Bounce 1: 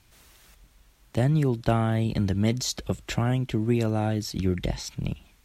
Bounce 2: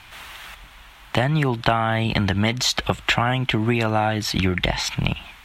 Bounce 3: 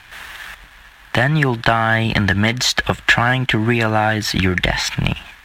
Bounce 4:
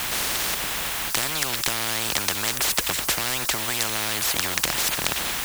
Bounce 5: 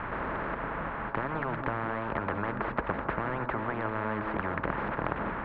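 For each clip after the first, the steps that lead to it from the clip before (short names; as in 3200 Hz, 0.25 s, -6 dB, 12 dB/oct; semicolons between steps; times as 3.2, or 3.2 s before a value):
band shelf 1600 Hz +13 dB 2.7 oct; compressor 6:1, threshold -25 dBFS, peak gain reduction 12.5 dB; gain +8.5 dB
bell 1700 Hz +10.5 dB 0.28 oct; sample leveller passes 1
in parallel at -8 dB: requantised 6-bit, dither triangular; on the sum: spectral compressor 10:1; gain -4.5 dB
inverse Chebyshev low-pass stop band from 6400 Hz, stop band 70 dB; notch 750 Hz, Q 12; on a send at -10 dB: reverb RT60 0.50 s, pre-delay 0.15 s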